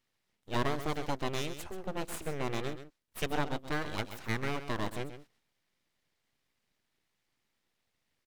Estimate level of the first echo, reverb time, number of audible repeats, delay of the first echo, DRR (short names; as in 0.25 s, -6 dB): -11.0 dB, none, 1, 0.132 s, none